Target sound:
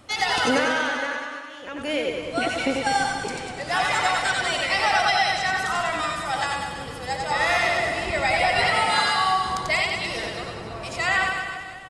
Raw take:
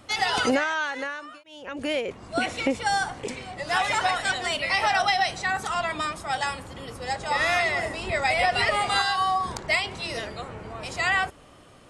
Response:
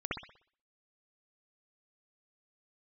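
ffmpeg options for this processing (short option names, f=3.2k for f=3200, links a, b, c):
-filter_complex "[0:a]asplit=2[a][b];[b]aecho=0:1:96|192|288|384|480|576|672:0.299|0.176|0.104|0.0613|0.0362|0.0213|0.0126[c];[a][c]amix=inputs=2:normalize=0,asettb=1/sr,asplit=3[d][e][f];[d]atrim=end=8.644[g];[e]atrim=start=8.64:end=9.16,asetpts=PTS-STARTPTS,afade=t=in:d=0.004:c=qsin,afade=t=out:st=0.516:d=0.004:c=qsin,afreqshift=67[h];[f]atrim=start=9.156[i];[g][h]acrossfade=d=0.004:c1=hsin:c2=qsin[j];[j][i]acrossfade=d=0.004:c1=qsin:c2=hsin,asplit=2[k][l];[l]aecho=0:1:90|198|327.6|483.1|669.7:0.631|0.398|0.251|0.158|0.1[m];[k][m]amix=inputs=2:normalize=0"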